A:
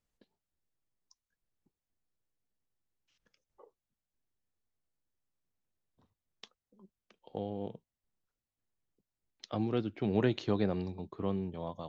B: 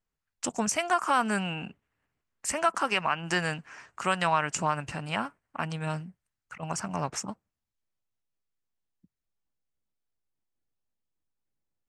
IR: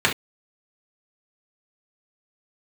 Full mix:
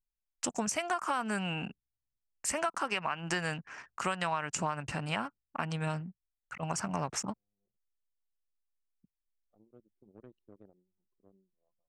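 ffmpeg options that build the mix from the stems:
-filter_complex "[0:a]aeval=exprs='(tanh(14.1*val(0)+0.7)-tanh(0.7))/14.1':channel_layout=same,lowshelf=frequency=190:gain=-8.5,volume=-18.5dB[link_01];[1:a]acompressor=threshold=-30dB:ratio=4,volume=0.5dB,asplit=2[link_02][link_03];[link_03]apad=whole_len=524305[link_04];[link_01][link_04]sidechaincompress=threshold=-45dB:ratio=8:attack=38:release=527[link_05];[link_05][link_02]amix=inputs=2:normalize=0,anlmdn=0.00631"

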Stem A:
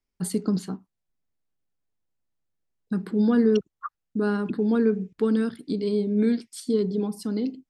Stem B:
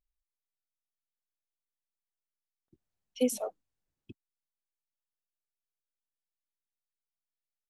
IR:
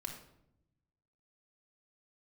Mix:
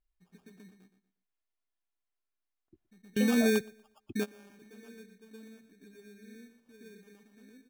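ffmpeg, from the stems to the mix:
-filter_complex "[0:a]aemphasis=mode=reproduction:type=50fm,acrusher=samples=22:mix=1:aa=0.000001,volume=-6.5dB,asplit=2[link_01][link_02];[link_02]volume=-24dB[link_03];[1:a]aecho=1:1:2.9:0.45,acompressor=threshold=-35dB:ratio=6,lowpass=3100,volume=2dB,asplit=3[link_04][link_05][link_06];[link_05]volume=-23.5dB[link_07];[link_06]apad=whole_len=339473[link_08];[link_01][link_08]sidechaingate=range=-29dB:threshold=-59dB:ratio=16:detection=peak[link_09];[link_03][link_07]amix=inputs=2:normalize=0,aecho=0:1:119|238|357|476:1|0.3|0.09|0.027[link_10];[link_09][link_04][link_10]amix=inputs=3:normalize=0"

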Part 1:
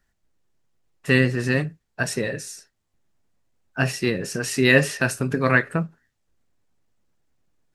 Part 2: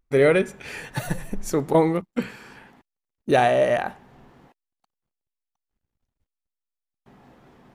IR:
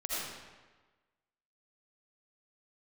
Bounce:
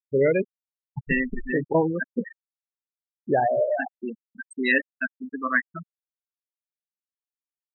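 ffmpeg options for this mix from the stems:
-filter_complex "[0:a]equalizer=frequency=125:width_type=o:width=1:gain=-10,equalizer=frequency=250:width_type=o:width=1:gain=7,equalizer=frequency=500:width_type=o:width=1:gain=-3,equalizer=frequency=1000:width_type=o:width=1:gain=9,equalizer=frequency=2000:width_type=o:width=1:gain=5,equalizer=frequency=4000:width_type=o:width=1:gain=3,equalizer=frequency=8000:width_type=o:width=1:gain=8,volume=-10dB[link_01];[1:a]volume=-3dB[link_02];[link_01][link_02]amix=inputs=2:normalize=0,acrusher=bits=8:mix=0:aa=0.000001,afftfilt=real='re*gte(hypot(re,im),0.178)':imag='im*gte(hypot(re,im),0.178)':win_size=1024:overlap=0.75"

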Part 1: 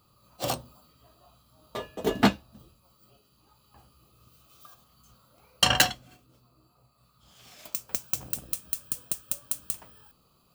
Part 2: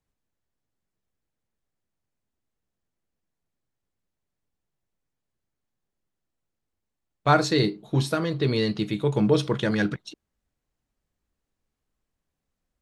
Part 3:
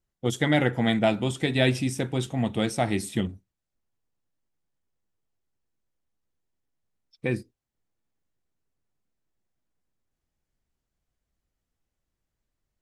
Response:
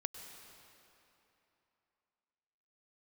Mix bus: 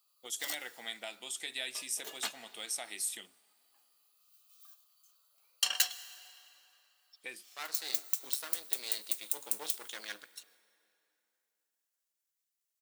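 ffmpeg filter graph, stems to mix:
-filter_complex "[0:a]highshelf=frequency=8200:gain=-7,volume=-5dB,asplit=2[link_01][link_02];[link_02]volume=-3.5dB[link_03];[1:a]aeval=exprs='max(val(0),0)':channel_layout=same,adelay=300,volume=-1.5dB,asplit=2[link_04][link_05];[link_05]volume=-11dB[link_06];[2:a]acompressor=threshold=-23dB:ratio=6,volume=2dB,asplit=3[link_07][link_08][link_09];[link_08]volume=-20.5dB[link_10];[link_09]apad=whole_len=578436[link_11];[link_04][link_11]sidechaincompress=threshold=-30dB:ratio=8:attack=5.7:release=1020[link_12];[3:a]atrim=start_sample=2205[link_13];[link_03][link_06][link_10]amix=inputs=3:normalize=0[link_14];[link_14][link_13]afir=irnorm=-1:irlink=0[link_15];[link_01][link_12][link_07][link_15]amix=inputs=4:normalize=0,highpass=290,aderivative"

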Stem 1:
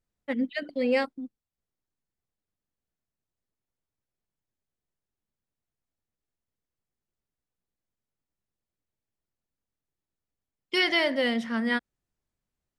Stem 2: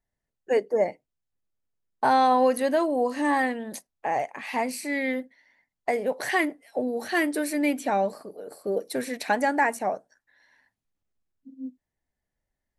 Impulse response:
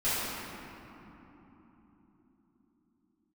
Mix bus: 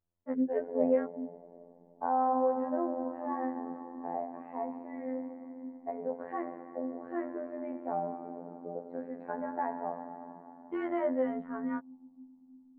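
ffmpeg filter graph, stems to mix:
-filter_complex "[0:a]volume=-0.5dB[link_01];[1:a]volume=-7.5dB,asplit=2[link_02][link_03];[link_03]volume=-16.5dB[link_04];[2:a]atrim=start_sample=2205[link_05];[link_04][link_05]afir=irnorm=-1:irlink=0[link_06];[link_01][link_02][link_06]amix=inputs=3:normalize=0,lowpass=frequency=1200:width=0.5412,lowpass=frequency=1200:width=1.3066,afftfilt=real='hypot(re,im)*cos(PI*b)':imag='0':win_size=2048:overlap=0.75"

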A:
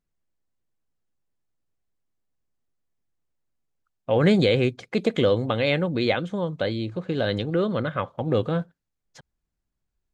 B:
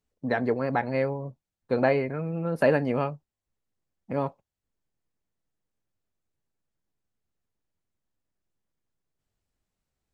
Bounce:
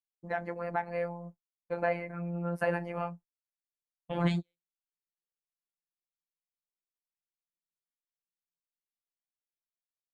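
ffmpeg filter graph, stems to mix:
ffmpeg -i stem1.wav -i stem2.wav -filter_complex "[0:a]equalizer=frequency=480:width=2.5:gain=-10,volume=-6.5dB[link_01];[1:a]equalizer=frequency=100:width_type=o:width=0.67:gain=-10,equalizer=frequency=400:width_type=o:width=0.67:gain=-10,equalizer=frequency=4000:width_type=o:width=0.67:gain=-11,volume=-1dB,asplit=2[link_02][link_03];[link_03]apad=whole_len=447093[link_04];[link_01][link_04]sidechaingate=range=-49dB:threshold=-45dB:ratio=16:detection=peak[link_05];[link_05][link_02]amix=inputs=2:normalize=0,agate=range=-33dB:threshold=-41dB:ratio=3:detection=peak,afftfilt=real='hypot(re,im)*cos(PI*b)':imag='0':win_size=1024:overlap=0.75" out.wav

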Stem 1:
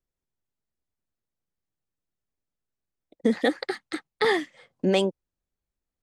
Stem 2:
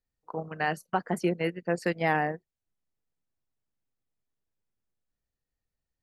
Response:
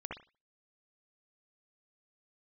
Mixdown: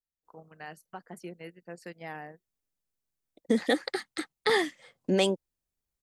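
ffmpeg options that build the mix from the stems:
-filter_complex "[0:a]adelay=250,volume=-3dB[link_01];[1:a]volume=-15.5dB[link_02];[link_01][link_02]amix=inputs=2:normalize=0,highshelf=frequency=5000:gain=8.5"

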